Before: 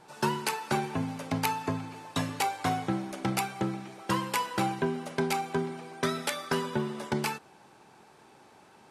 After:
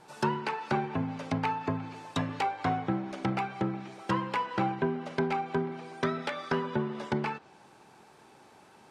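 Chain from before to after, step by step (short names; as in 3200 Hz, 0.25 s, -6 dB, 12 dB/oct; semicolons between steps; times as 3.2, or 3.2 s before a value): treble ducked by the level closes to 2200 Hz, closed at -27.5 dBFS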